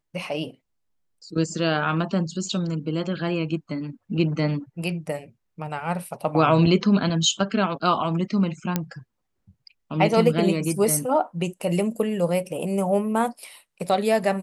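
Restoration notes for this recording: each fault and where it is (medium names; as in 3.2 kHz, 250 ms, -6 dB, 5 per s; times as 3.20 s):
8.76 s: pop -8 dBFS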